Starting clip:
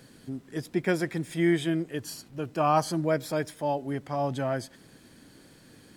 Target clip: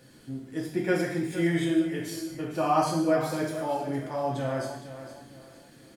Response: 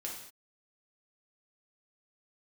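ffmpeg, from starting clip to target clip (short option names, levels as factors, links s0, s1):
-filter_complex "[0:a]aecho=1:1:461|922|1383:0.251|0.0854|0.029[s0];[1:a]atrim=start_sample=2205[s1];[s0][s1]afir=irnorm=-1:irlink=0"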